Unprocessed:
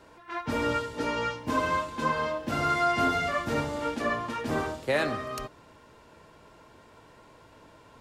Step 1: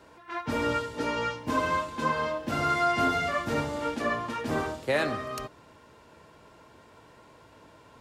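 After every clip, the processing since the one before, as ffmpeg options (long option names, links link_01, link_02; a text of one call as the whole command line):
ffmpeg -i in.wav -af "highpass=47" out.wav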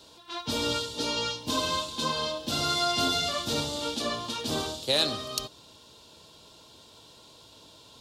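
ffmpeg -i in.wav -af "highshelf=frequency=2700:width_type=q:width=3:gain=11,volume=-2dB" out.wav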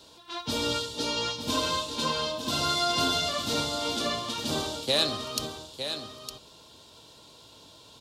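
ffmpeg -i in.wav -af "aecho=1:1:909:0.376" out.wav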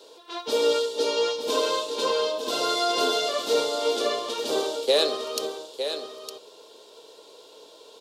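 ffmpeg -i in.wav -af "highpass=frequency=440:width_type=q:width=4.9" out.wav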